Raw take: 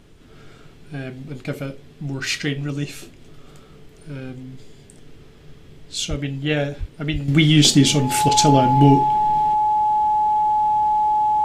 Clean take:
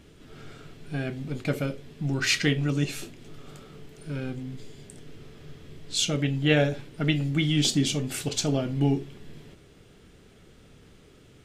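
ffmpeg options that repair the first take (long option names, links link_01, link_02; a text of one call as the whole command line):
ffmpeg -i in.wav -filter_complex "[0:a]bandreject=frequency=850:width=30,asplit=3[link_01][link_02][link_03];[link_01]afade=type=out:start_time=6.09:duration=0.02[link_04];[link_02]highpass=frequency=140:width=0.5412,highpass=frequency=140:width=1.3066,afade=type=in:start_time=6.09:duration=0.02,afade=type=out:start_time=6.21:duration=0.02[link_05];[link_03]afade=type=in:start_time=6.21:duration=0.02[link_06];[link_04][link_05][link_06]amix=inputs=3:normalize=0,asplit=3[link_07][link_08][link_09];[link_07]afade=type=out:start_time=6.79:duration=0.02[link_10];[link_08]highpass=frequency=140:width=0.5412,highpass=frequency=140:width=1.3066,afade=type=in:start_time=6.79:duration=0.02,afade=type=out:start_time=6.91:duration=0.02[link_11];[link_09]afade=type=in:start_time=6.91:duration=0.02[link_12];[link_10][link_11][link_12]amix=inputs=3:normalize=0,asplit=3[link_13][link_14][link_15];[link_13]afade=type=out:start_time=7.12:duration=0.02[link_16];[link_14]highpass=frequency=140:width=0.5412,highpass=frequency=140:width=1.3066,afade=type=in:start_time=7.12:duration=0.02,afade=type=out:start_time=7.24:duration=0.02[link_17];[link_15]afade=type=in:start_time=7.24:duration=0.02[link_18];[link_16][link_17][link_18]amix=inputs=3:normalize=0,agate=range=-21dB:threshold=-37dB,asetnsamples=nb_out_samples=441:pad=0,asendcmd='7.28 volume volume -10dB',volume=0dB" out.wav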